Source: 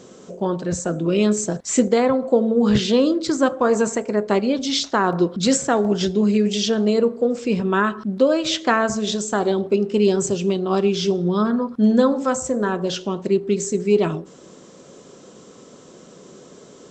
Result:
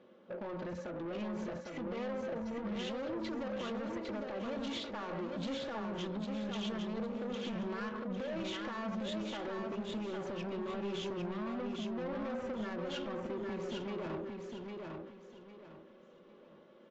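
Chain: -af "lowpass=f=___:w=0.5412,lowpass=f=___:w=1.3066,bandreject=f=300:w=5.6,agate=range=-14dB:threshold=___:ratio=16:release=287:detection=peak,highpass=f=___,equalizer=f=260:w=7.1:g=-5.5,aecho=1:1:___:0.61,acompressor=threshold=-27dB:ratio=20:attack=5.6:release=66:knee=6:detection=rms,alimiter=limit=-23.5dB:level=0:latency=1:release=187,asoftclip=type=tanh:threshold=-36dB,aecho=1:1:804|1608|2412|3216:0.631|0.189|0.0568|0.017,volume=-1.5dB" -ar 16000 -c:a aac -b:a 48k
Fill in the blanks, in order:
3k, 3k, -36dB, 140, 3.5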